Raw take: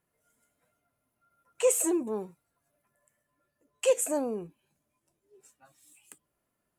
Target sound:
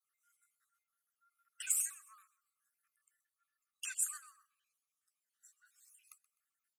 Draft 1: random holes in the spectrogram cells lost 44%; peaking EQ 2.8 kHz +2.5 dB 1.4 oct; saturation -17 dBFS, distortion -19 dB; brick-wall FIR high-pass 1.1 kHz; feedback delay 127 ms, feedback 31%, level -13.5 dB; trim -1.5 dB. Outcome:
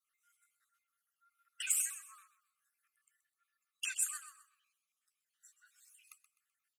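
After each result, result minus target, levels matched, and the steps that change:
echo-to-direct +6.5 dB; 2 kHz band +4.0 dB
change: feedback delay 127 ms, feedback 31%, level -20 dB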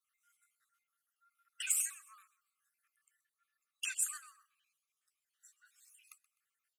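2 kHz band +3.5 dB
change: peaking EQ 2.8 kHz -4.5 dB 1.4 oct

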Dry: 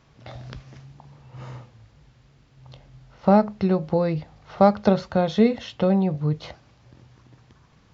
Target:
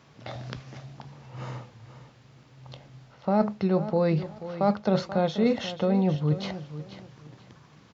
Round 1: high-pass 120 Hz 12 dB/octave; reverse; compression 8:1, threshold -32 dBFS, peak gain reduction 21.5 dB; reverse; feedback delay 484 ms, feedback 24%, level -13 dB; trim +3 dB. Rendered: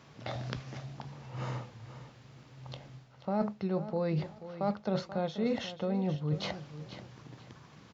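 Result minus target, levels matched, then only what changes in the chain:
compression: peak gain reduction +8.5 dB
change: compression 8:1, threshold -22.5 dBFS, peak gain reduction 13 dB

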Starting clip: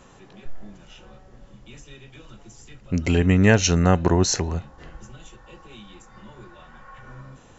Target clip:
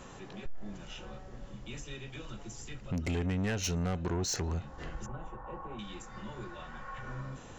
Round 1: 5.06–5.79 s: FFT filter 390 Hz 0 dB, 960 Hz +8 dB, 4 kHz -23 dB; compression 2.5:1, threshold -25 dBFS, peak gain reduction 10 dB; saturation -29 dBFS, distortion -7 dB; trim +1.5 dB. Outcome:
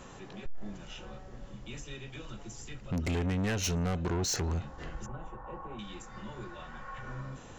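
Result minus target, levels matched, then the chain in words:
compression: peak gain reduction -4 dB
5.06–5.79 s: FFT filter 390 Hz 0 dB, 960 Hz +8 dB, 4 kHz -23 dB; compression 2.5:1, threshold -31.5 dBFS, peak gain reduction 14 dB; saturation -29 dBFS, distortion -10 dB; trim +1.5 dB

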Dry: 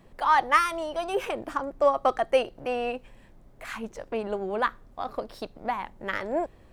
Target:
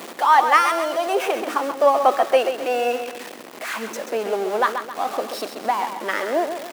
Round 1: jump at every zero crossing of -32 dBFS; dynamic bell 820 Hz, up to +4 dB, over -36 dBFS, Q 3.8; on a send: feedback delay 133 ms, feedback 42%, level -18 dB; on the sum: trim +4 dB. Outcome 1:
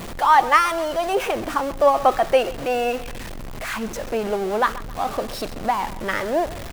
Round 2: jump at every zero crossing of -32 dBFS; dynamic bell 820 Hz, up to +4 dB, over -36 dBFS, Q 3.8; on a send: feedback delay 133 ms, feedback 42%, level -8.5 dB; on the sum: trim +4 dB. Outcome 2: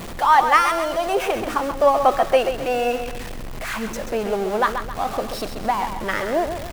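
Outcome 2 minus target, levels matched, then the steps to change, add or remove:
250 Hz band +2.5 dB
add after dynamic bell: high-pass 260 Hz 24 dB/octave

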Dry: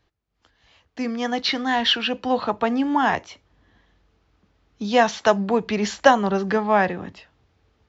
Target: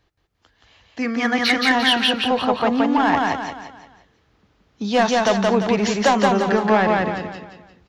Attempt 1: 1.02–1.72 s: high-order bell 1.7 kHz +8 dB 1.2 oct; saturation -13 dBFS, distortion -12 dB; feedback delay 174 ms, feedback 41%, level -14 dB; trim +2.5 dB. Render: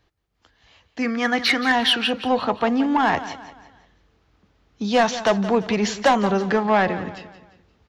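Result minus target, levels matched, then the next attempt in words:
echo-to-direct -12 dB
1.02–1.72 s: high-order bell 1.7 kHz +8 dB 1.2 oct; saturation -13 dBFS, distortion -12 dB; feedback delay 174 ms, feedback 41%, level -2 dB; trim +2.5 dB

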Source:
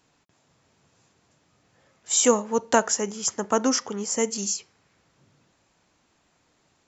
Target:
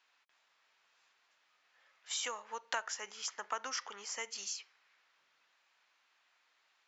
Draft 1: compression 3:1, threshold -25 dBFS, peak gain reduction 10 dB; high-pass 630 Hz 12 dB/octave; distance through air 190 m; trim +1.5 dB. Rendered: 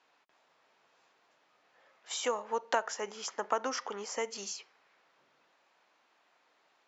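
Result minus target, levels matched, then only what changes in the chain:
500 Hz band +9.0 dB
change: high-pass 1.5 kHz 12 dB/octave

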